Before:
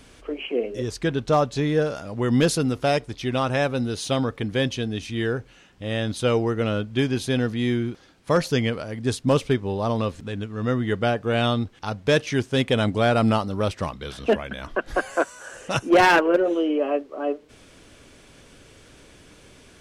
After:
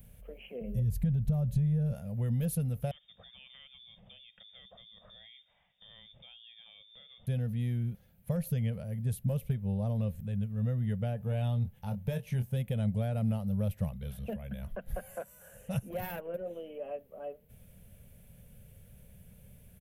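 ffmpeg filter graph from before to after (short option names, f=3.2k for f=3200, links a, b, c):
-filter_complex "[0:a]asettb=1/sr,asplit=3[a][b][c];[a]atrim=end=0.614[d];[b]atrim=start=0.61:end=1.93,asetpts=PTS-STARTPTS,afade=t=in:d=0.004:c=qsin,afade=t=out:st=1.316:d=0.004:c=qsin,bass=f=250:g=13,treble=f=4k:g=1,acompressor=threshold=-23dB:ratio=4:attack=3.2:release=140:knee=1:detection=peak[e];[c]atrim=start=1.926[f];[d][e]acrossfade=d=0.004:c1=hsin:c2=qsin[g];[g][f]acrossfade=d=0.004:c1=qsin:c2=hsin,asettb=1/sr,asplit=3[h][i][j];[h]atrim=end=2.914[k];[i]atrim=start=2.91:end=7.27,asetpts=PTS-STARTPTS,afade=t=in:d=0.004:c=qsin,afade=t=out:st=4.356:d=0.004:c=qsin,acompressor=threshold=-31dB:ratio=12:attack=3.2:release=140:knee=1:detection=peak,lowpass=f=3.1k:t=q:w=0.5098,lowpass=f=3.1k:t=q:w=0.6013,lowpass=f=3.1k:t=q:w=0.9,lowpass=f=3.1k:t=q:w=2.563,afreqshift=-3700[l];[j]atrim=start=7.266[m];[k][l]acrossfade=d=0.004:c1=hsin:c2=qsin[n];[n][m]acrossfade=d=0.004:c1=qsin:c2=hsin,asettb=1/sr,asplit=3[o][p][q];[o]atrim=end=11.184[r];[p]atrim=start=11.18:end=12.53,asetpts=PTS-STARTPTS,afade=t=in:d=0.004:c=qsin,afade=t=out:st=1.346:d=0.004:c=qsin,equalizer=f=890:t=o:w=0.24:g=8,asplit=2[s][t];[t]adelay=24,volume=-8dB[u];[s][u]amix=inputs=2:normalize=0,atrim=end_sample=59535[v];[q]atrim=start=12.526[w];[r][v]acrossfade=d=0.004:c1=hsin:c2=qsin[x];[x][w]acrossfade=d=0.004:c1=qsin:c2=hsin,acompressor=threshold=-21dB:ratio=6,firequalizer=gain_entry='entry(200,0);entry(290,-28);entry(530,-10);entry(1100,-25);entry(1700,-19);entry(2500,-17);entry(4900,-25);entry(8300,-14);entry(13000,14)':delay=0.05:min_phase=1"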